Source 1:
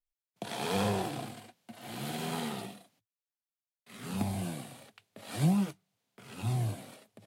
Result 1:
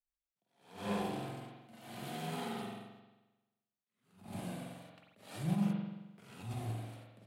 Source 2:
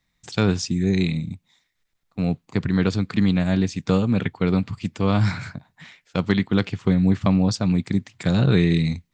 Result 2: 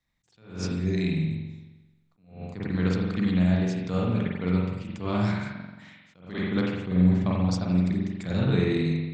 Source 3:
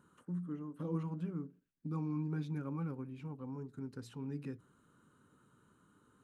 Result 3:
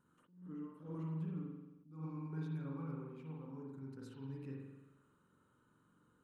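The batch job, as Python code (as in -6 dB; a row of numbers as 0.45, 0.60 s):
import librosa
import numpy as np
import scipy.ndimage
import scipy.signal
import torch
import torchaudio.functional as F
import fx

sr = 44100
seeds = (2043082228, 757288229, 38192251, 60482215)

y = fx.vibrato(x, sr, rate_hz=0.93, depth_cents=8.7)
y = fx.rev_spring(y, sr, rt60_s=1.1, pass_ms=(44,), chirp_ms=45, drr_db=-2.0)
y = fx.attack_slew(y, sr, db_per_s=120.0)
y = y * 10.0 ** (-8.5 / 20.0)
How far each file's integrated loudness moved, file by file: -6.5, -4.5, -4.5 LU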